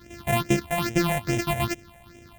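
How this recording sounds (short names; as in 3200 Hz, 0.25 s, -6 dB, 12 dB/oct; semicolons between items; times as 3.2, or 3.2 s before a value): a buzz of ramps at a fixed pitch in blocks of 128 samples; phasing stages 6, 2.4 Hz, lowest notch 320–1200 Hz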